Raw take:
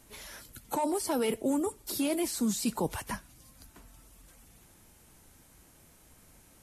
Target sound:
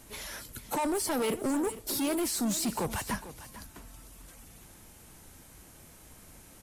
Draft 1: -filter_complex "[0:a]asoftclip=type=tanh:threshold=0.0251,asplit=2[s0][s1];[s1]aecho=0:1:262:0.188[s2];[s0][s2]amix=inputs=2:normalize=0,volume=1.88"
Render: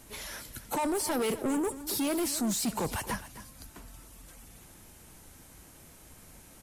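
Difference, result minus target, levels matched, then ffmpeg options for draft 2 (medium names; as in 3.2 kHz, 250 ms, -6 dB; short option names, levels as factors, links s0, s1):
echo 187 ms early
-filter_complex "[0:a]asoftclip=type=tanh:threshold=0.0251,asplit=2[s0][s1];[s1]aecho=0:1:449:0.188[s2];[s0][s2]amix=inputs=2:normalize=0,volume=1.88"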